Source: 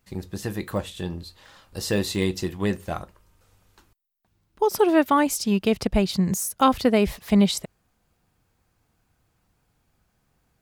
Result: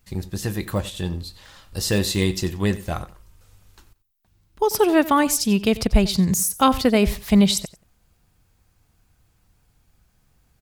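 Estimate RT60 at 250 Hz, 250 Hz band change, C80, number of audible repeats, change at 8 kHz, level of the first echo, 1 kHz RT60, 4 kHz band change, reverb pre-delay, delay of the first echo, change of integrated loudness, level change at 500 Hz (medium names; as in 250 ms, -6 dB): no reverb, +2.5 dB, no reverb, 2, +6.0 dB, -17.5 dB, no reverb, +5.0 dB, no reverb, 91 ms, +2.5 dB, +1.0 dB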